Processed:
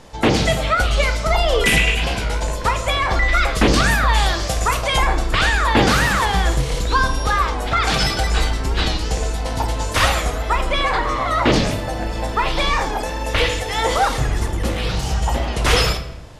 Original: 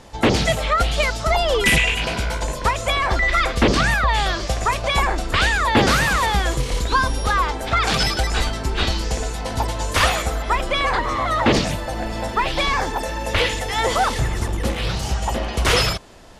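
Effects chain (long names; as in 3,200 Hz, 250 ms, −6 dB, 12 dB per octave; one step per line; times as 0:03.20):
0:03.54–0:04.98: high-shelf EQ 7,900 Hz +11 dB
rectangular room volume 310 cubic metres, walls mixed, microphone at 0.52 metres
wow of a warped record 45 rpm, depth 100 cents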